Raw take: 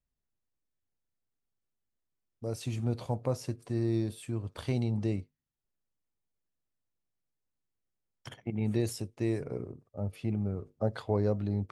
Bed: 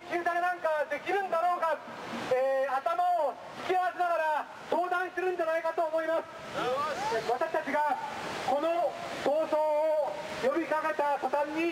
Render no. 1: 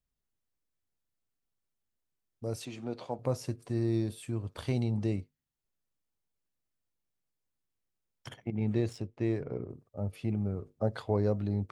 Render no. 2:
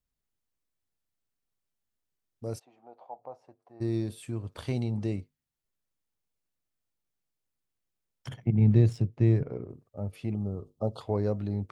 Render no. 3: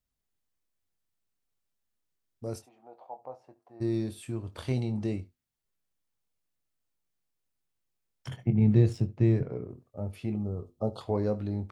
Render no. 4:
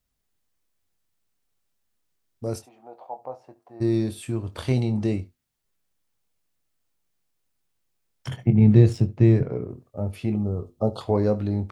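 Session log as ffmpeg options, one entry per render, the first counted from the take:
ffmpeg -i in.wav -filter_complex "[0:a]asettb=1/sr,asplit=3[link_01][link_02][link_03];[link_01]atrim=end=2.654[link_04];[link_02]atrim=start=2.65:end=3.19,asetpts=PTS-STARTPTS,afade=type=in:duration=0.004:curve=qsin,afade=type=out:start_time=0.536:duration=0.004:curve=qsin,highpass=270,lowpass=5200[link_05];[link_03]atrim=start=3.186[link_06];[link_04][link_05]acrossfade=duration=0.004:curve1=hsin:curve2=qsin[link_07];[link_07][link_06]acrossfade=duration=0.004:curve1=qsin:curve2=hsin,asettb=1/sr,asplit=3[link_08][link_09][link_10];[link_08]atrim=end=8.484[link_11];[link_09]atrim=start=8.48:end=9.7,asetpts=PTS-STARTPTS,afade=type=in:duration=0.004:curve=qsin,afade=type=out:start_time=1.216:duration=0.004:curve=qsin,adynamicsmooth=sensitivity=8:basefreq=3100[link_12];[link_10]atrim=start=9.696[link_13];[link_11][link_12]acrossfade=duration=0.004:curve1=hsin:curve2=qsin[link_14];[link_14][link_13]acrossfade=duration=0.004:curve1=qsin:curve2=hsin" out.wav
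ffmpeg -i in.wav -filter_complex "[0:a]asplit=3[link_01][link_02][link_03];[link_01]afade=type=out:start_time=2.58:duration=0.02[link_04];[link_02]bandpass=frequency=780:width_type=q:width=4.5,afade=type=in:start_time=2.58:duration=0.02,afade=type=out:start_time=3.8:duration=0.02[link_05];[link_03]afade=type=in:start_time=3.8:duration=0.02[link_06];[link_04][link_05][link_06]amix=inputs=3:normalize=0,asettb=1/sr,asplit=3[link_07][link_08][link_09];[link_07]atrim=end=8.284[link_10];[link_08]atrim=start=8.28:end=9.43,asetpts=PTS-STARTPTS,afade=type=in:duration=0.004:curve=qsin,afade=type=out:start_time=1.146:duration=0.004:curve=qsin,equalizer=frequency=130:width_type=o:width=1.5:gain=14[link_11];[link_09]atrim=start=9.426[link_12];[link_10][link_11]acrossfade=duration=0.004:curve1=hsin:curve2=qsin[link_13];[link_13][link_12]acrossfade=duration=0.004:curve1=qsin:curve2=hsin,asettb=1/sr,asplit=3[link_14][link_15][link_16];[link_14]atrim=end=10.344[link_17];[link_15]atrim=start=10.34:end=11.01,asetpts=PTS-STARTPTS,afade=type=in:duration=0.004:curve=qsin,afade=type=out:start_time=0.666:duration=0.004:curve=qsin,asuperstop=centerf=1900:order=12:qfactor=1.3[link_18];[link_16]atrim=start=11.006[link_19];[link_17][link_18]acrossfade=duration=0.004:curve1=hsin:curve2=qsin[link_20];[link_20][link_19]acrossfade=duration=0.004:curve1=qsin:curve2=hsin" out.wav
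ffmpeg -i in.wav -filter_complex "[0:a]asplit=2[link_01][link_02];[link_02]adelay=23,volume=-10dB[link_03];[link_01][link_03]amix=inputs=2:normalize=0,aecho=1:1:72:0.0944" out.wav
ffmpeg -i in.wav -af "volume=7dB" out.wav

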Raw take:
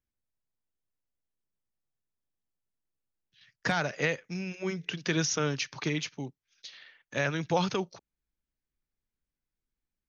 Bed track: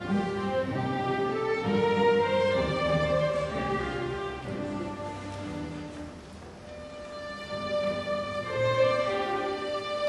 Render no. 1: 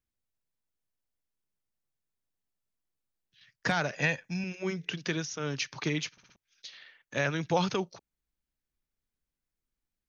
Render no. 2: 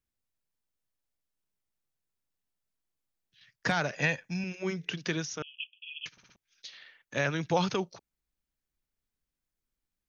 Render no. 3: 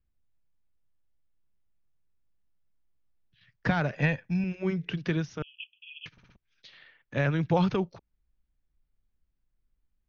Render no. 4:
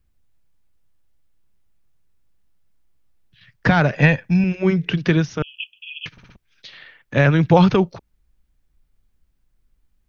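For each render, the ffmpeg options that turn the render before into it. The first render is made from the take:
ffmpeg -i in.wav -filter_complex "[0:a]asettb=1/sr,asplit=3[link_01][link_02][link_03];[link_01]atrim=end=3.954[link_04];[link_02]atrim=start=3.95:end=4.44,asetpts=PTS-STARTPTS,afade=type=in:duration=0.004:curve=qsin,afade=type=out:start_time=0.486:duration=0.004:curve=qsin,aecho=1:1:1.2:0.65,atrim=end_sample=21609[link_05];[link_03]atrim=start=4.436[link_06];[link_04][link_05]acrossfade=duration=0.004:curve1=hsin:curve2=qsin[link_07];[link_07][link_06]acrossfade=duration=0.004:curve1=qsin:curve2=hsin,asplit=7[link_08][link_09][link_10][link_11][link_12][link_13][link_14];[link_08]atrim=end=5.26,asetpts=PTS-STARTPTS,afade=type=out:start_time=5.01:duration=0.25:silence=0.354813[link_15];[link_09]atrim=start=5.26:end=5.36,asetpts=PTS-STARTPTS,volume=-9dB[link_16];[link_10]atrim=start=5.36:end=6.182,asetpts=PTS-STARTPTS,afade=type=in:duration=0.25:silence=0.354813[link_17];[link_11]atrim=start=6.118:end=6.182[link_18];[link_12]atrim=start=6.118:end=6.182[link_19];[link_13]atrim=start=6.118:end=6.182[link_20];[link_14]atrim=start=6.358[link_21];[link_15][link_16][link_17]concat=n=3:v=0:a=1[link_22];[link_22][link_18]acrossfade=duration=0.004:curve1=hsin:curve2=hsin[link_23];[link_23][link_19]acrossfade=duration=0.004:curve1=hsin:curve2=hsin[link_24];[link_24][link_20]acrossfade=duration=0.004:curve1=hsin:curve2=hsin[link_25];[link_25][link_21]acrossfade=duration=0.004:curve1=hsin:curve2=hsin" out.wav
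ffmpeg -i in.wav -filter_complex "[0:a]asettb=1/sr,asplit=3[link_01][link_02][link_03];[link_01]atrim=end=5.424[link_04];[link_02]atrim=start=5.42:end=6.06,asetpts=PTS-STARTPTS,afade=type=in:duration=0.004:curve=qsin,afade=type=out:start_time=0.636:duration=0.004:curve=qsin,asuperpass=centerf=2900:order=20:qfactor=3.2[link_05];[link_03]atrim=start=6.056[link_06];[link_04][link_05]acrossfade=duration=0.004:curve1=hsin:curve2=qsin[link_07];[link_07][link_06]acrossfade=duration=0.004:curve1=qsin:curve2=hsin" out.wav
ffmpeg -i in.wav -af "lowpass=4400,aemphasis=mode=reproduction:type=bsi" out.wav
ffmpeg -i in.wav -af "volume=11.5dB,alimiter=limit=-2dB:level=0:latency=1" out.wav

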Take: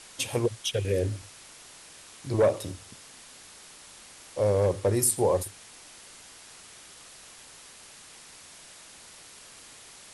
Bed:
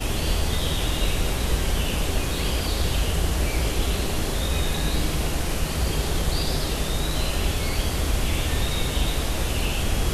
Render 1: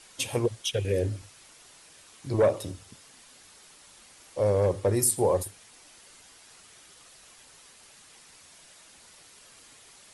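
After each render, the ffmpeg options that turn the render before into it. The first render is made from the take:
ffmpeg -i in.wav -af "afftdn=noise_reduction=6:noise_floor=-50" out.wav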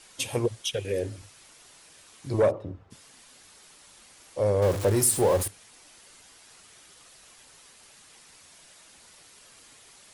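ffmpeg -i in.wav -filter_complex "[0:a]asettb=1/sr,asplit=3[link_01][link_02][link_03];[link_01]atrim=end=0.754[link_04];[link_02]atrim=start=0.75:end=1.18,asetpts=PTS-STARTPTS,afade=type=in:duration=0.004:curve=qsin,afade=type=out:start_time=0.426:duration=0.004:curve=qsin,lowshelf=frequency=170:gain=-10[link_05];[link_03]atrim=start=1.176[link_06];[link_04][link_05]acrossfade=duration=0.004:curve1=hsin:curve2=qsin[link_07];[link_07][link_06]acrossfade=duration=0.004:curve1=qsin:curve2=hsin,asplit=3[link_08][link_09][link_10];[link_08]afade=type=out:start_time=2.5:duration=0.02[link_11];[link_09]lowpass=1200,afade=type=in:start_time=2.5:duration=0.02,afade=type=out:start_time=2.9:duration=0.02[link_12];[link_10]afade=type=in:start_time=2.9:duration=0.02[link_13];[link_11][link_12][link_13]amix=inputs=3:normalize=0,asettb=1/sr,asplit=3[link_14][link_15][link_16];[link_14]atrim=end=4.624[link_17];[link_15]atrim=start=4.62:end=5.48,asetpts=PTS-STARTPTS,afade=type=in:duration=0.004:curve=qsin,afade=type=out:start_time=0.856:duration=0.004:curve=qsin,aeval=exprs='val(0)+0.5*0.0376*sgn(val(0))':channel_layout=same[link_18];[link_16]atrim=start=5.476[link_19];[link_17][link_18]acrossfade=duration=0.004:curve1=hsin:curve2=qsin[link_20];[link_20][link_19]acrossfade=duration=0.004:curve1=qsin:curve2=hsin" out.wav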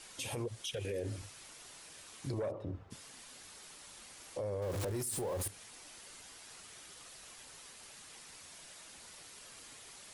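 ffmpeg -i in.wav -af "acompressor=threshold=-29dB:ratio=6,alimiter=level_in=6.5dB:limit=-24dB:level=0:latency=1:release=30,volume=-6.5dB" out.wav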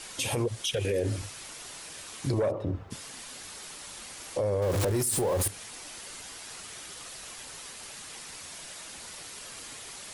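ffmpeg -i in.wav -af "volume=10dB" out.wav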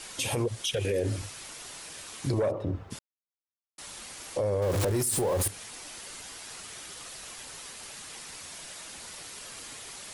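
ffmpeg -i in.wav -filter_complex "[0:a]asplit=3[link_01][link_02][link_03];[link_01]atrim=end=2.99,asetpts=PTS-STARTPTS,afade=type=out:start_time=2.986:duration=0.004:curve=hsin[link_04];[link_02]atrim=start=2.99:end=3.78,asetpts=PTS-STARTPTS,volume=0[link_05];[link_03]atrim=start=3.78,asetpts=PTS-STARTPTS,afade=type=in:duration=0.004:curve=hsin[link_06];[link_04][link_05][link_06]concat=n=3:v=0:a=1" out.wav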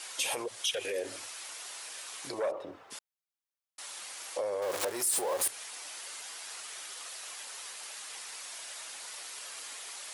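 ffmpeg -i in.wav -af "highpass=620" out.wav

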